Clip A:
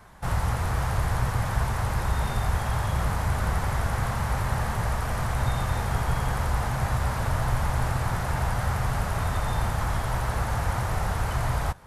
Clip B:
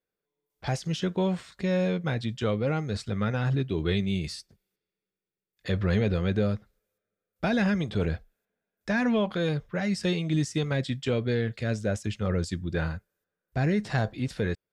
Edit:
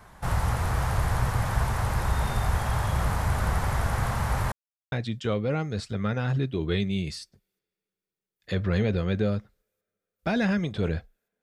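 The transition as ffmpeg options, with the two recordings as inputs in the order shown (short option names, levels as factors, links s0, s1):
-filter_complex "[0:a]apad=whole_dur=11.42,atrim=end=11.42,asplit=2[s0][s1];[s0]atrim=end=4.52,asetpts=PTS-STARTPTS,afade=t=out:st=4.516:d=0.004:c=hsin[s2];[s1]atrim=start=4.52:end=4.92,asetpts=PTS-STARTPTS,volume=0[s3];[1:a]atrim=start=2.09:end=8.59,asetpts=PTS-STARTPTS,afade=t=in:d=0.004:c=hsin[s4];[s2][s3][s4]concat=n=3:v=0:a=1"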